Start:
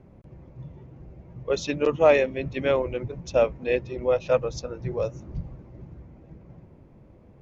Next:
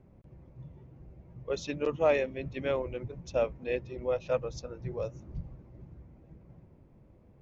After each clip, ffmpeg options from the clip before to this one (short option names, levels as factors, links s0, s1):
-af "lowshelf=f=140:g=3,volume=0.398"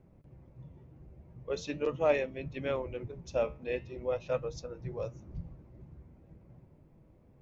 -af "flanger=delay=6.1:depth=7.4:regen=76:speed=0.43:shape=sinusoidal,volume=1.33"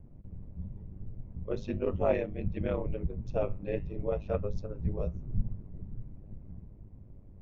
-af "aeval=exprs='val(0)*sin(2*PI*51*n/s)':c=same,aemphasis=mode=reproduction:type=riaa"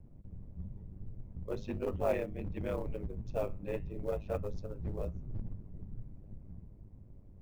-filter_complex "[0:a]acrossover=split=490[s0][s1];[s0]asoftclip=type=hard:threshold=0.0316[s2];[s1]acrusher=bits=6:mode=log:mix=0:aa=0.000001[s3];[s2][s3]amix=inputs=2:normalize=0,volume=0.708"